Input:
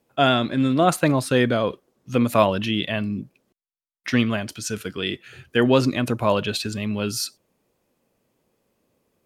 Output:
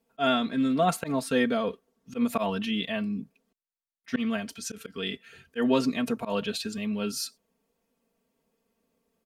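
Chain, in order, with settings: comb 4.4 ms, depth 91%; auto swell 0.101 s; gain -8.5 dB

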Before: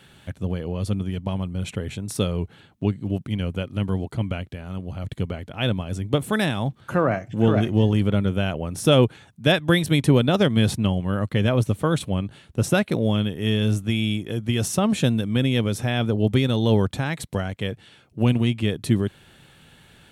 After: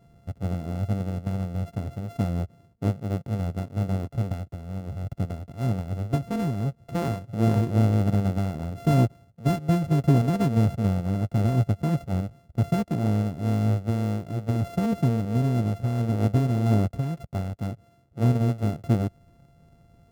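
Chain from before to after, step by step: sample sorter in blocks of 64 samples; tilt shelf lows +9.5 dB, about 630 Hz; gain -8.5 dB

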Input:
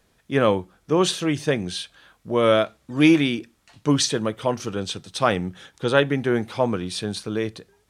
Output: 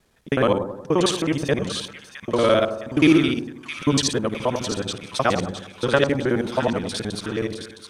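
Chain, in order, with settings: local time reversal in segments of 53 ms; on a send: split-band echo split 1200 Hz, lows 93 ms, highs 0.663 s, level -9 dB

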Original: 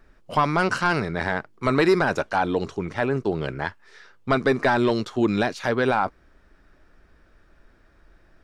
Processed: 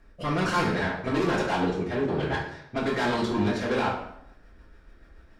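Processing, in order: time stretch by phase-locked vocoder 0.64×; rotary speaker horn 1.2 Hz, later 7 Hz, at 3.56; soft clip -27 dBFS, distortion -7 dB; reverb RT60 0.75 s, pre-delay 3 ms, DRR -4 dB

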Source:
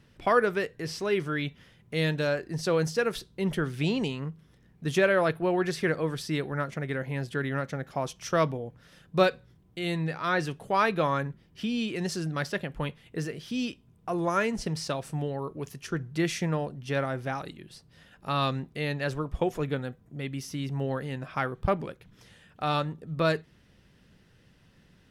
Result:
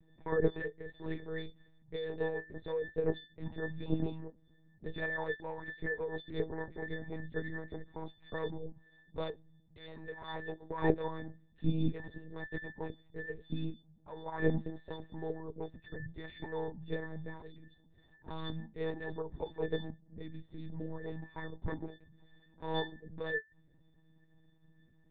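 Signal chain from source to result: octave resonator A, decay 0.15 s; monotone LPC vocoder at 8 kHz 160 Hz; gain +4.5 dB

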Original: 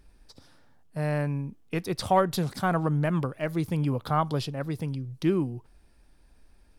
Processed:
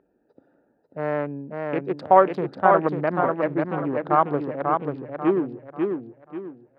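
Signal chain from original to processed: Wiener smoothing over 41 samples; Butterworth band-pass 760 Hz, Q 0.51; warbling echo 0.541 s, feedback 34%, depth 76 cents, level -4 dB; gain +8 dB

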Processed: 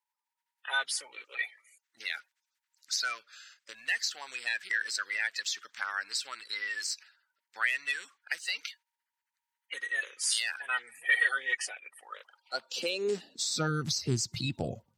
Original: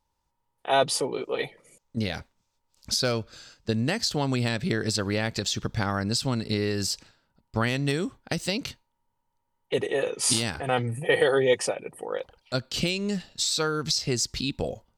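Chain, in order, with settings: bin magnitudes rounded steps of 30 dB; high-pass sweep 1700 Hz -> 110 Hz, 12.12–13.9; gain -5.5 dB

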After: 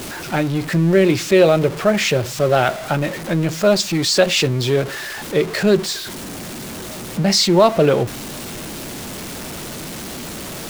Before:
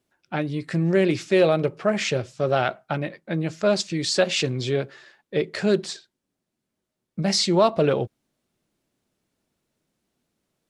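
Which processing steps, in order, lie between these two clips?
zero-crossing step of -29 dBFS; gain +5 dB

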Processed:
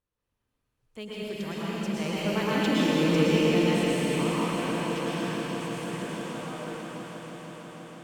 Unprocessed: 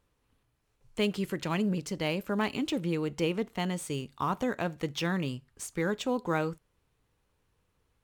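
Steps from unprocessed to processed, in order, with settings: Doppler pass-by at 2.9, 6 m/s, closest 3 m; on a send: swelling echo 0.162 s, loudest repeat 5, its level -14.5 dB; on the sum: plate-style reverb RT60 4.8 s, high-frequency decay 1×, pre-delay 95 ms, DRR -9 dB

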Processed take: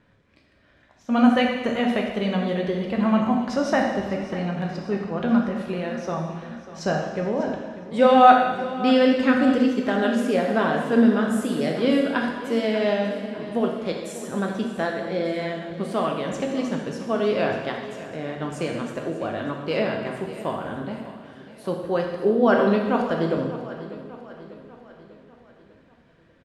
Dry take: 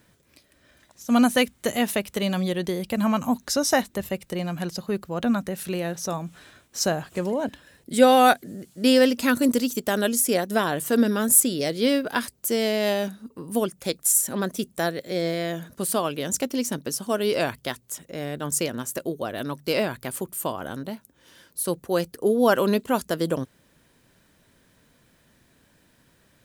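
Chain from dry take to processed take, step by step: LPF 2700 Hz 12 dB/oct; feedback echo 0.595 s, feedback 52%, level -15 dB; plate-style reverb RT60 1.3 s, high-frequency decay 1×, DRR 0.5 dB; gain -1 dB

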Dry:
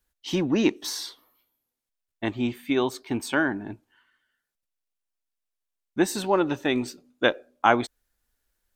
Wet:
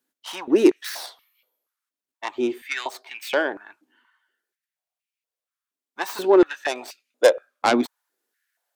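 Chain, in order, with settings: tracing distortion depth 0.19 ms; 6.41–6.83 notch 2000 Hz, Q 11; stepped high-pass 4.2 Hz 270–2400 Hz; gain -1 dB

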